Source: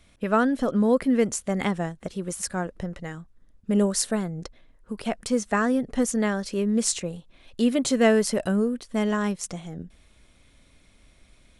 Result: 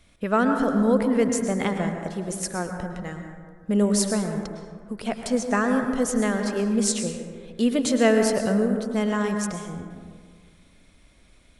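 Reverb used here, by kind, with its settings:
dense smooth reverb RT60 1.8 s, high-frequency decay 0.35×, pre-delay 95 ms, DRR 4.5 dB

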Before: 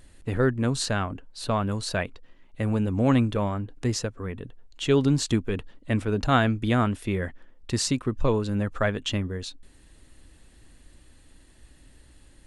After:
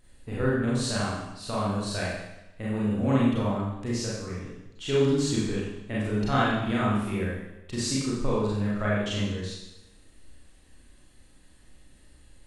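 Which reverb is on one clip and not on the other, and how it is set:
four-comb reverb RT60 0.92 s, combs from 30 ms, DRR −7 dB
level −9.5 dB

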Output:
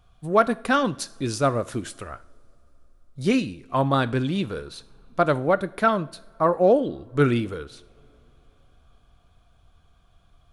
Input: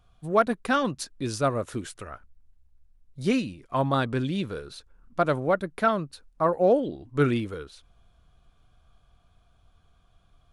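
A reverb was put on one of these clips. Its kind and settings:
coupled-rooms reverb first 0.54 s, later 3.9 s, from −22 dB, DRR 15.5 dB
level +3 dB

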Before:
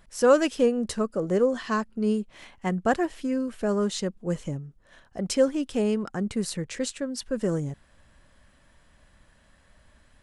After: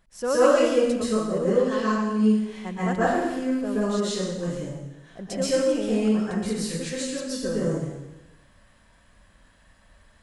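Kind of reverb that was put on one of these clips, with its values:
dense smooth reverb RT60 1 s, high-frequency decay 1×, pre-delay 110 ms, DRR −10 dB
level −8 dB

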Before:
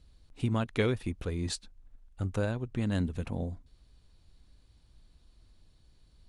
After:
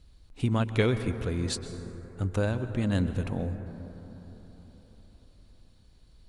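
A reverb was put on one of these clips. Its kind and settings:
dense smooth reverb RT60 4.4 s, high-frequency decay 0.25×, pre-delay 110 ms, DRR 10 dB
level +3 dB

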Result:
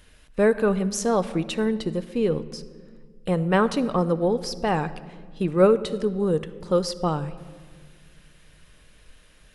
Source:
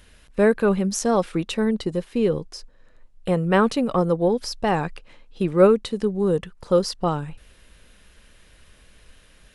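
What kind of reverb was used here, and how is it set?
rectangular room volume 2,500 cubic metres, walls mixed, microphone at 0.47 metres
level −2 dB

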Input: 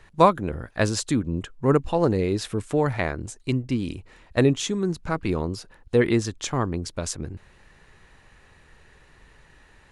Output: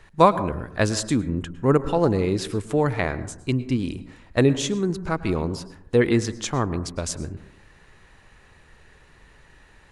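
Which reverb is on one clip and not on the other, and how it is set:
dense smooth reverb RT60 0.73 s, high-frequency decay 0.3×, pre-delay 95 ms, DRR 14 dB
level +1 dB

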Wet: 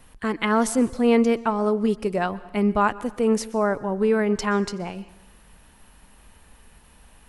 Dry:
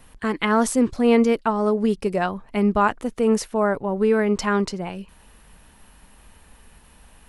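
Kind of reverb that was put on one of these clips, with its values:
dense smooth reverb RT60 0.93 s, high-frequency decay 0.95×, pre-delay 110 ms, DRR 18.5 dB
level −1.5 dB

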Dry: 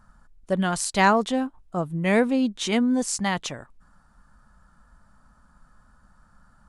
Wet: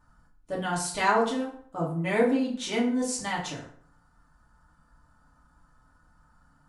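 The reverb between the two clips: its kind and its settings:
feedback delay network reverb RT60 0.56 s, low-frequency decay 1×, high-frequency decay 0.7×, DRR −5.5 dB
level −10 dB

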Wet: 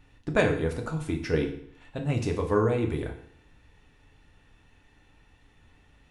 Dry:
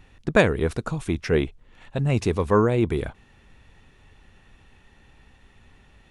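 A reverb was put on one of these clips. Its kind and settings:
feedback delay network reverb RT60 0.61 s, low-frequency decay 1.05×, high-frequency decay 0.95×, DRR 2 dB
level −7 dB

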